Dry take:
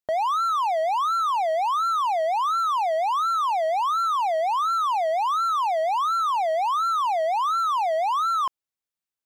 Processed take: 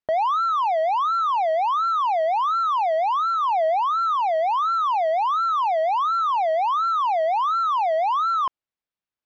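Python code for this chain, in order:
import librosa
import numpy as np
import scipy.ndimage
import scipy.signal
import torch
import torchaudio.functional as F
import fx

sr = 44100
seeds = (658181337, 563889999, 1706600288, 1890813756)

y = fx.low_shelf(x, sr, hz=340.0, db=11.5, at=(3.4, 4.13), fade=0.02)
y = fx.rider(y, sr, range_db=10, speed_s=0.5)
y = fx.air_absorb(y, sr, metres=170.0)
y = F.gain(torch.from_numpy(y), 2.5).numpy()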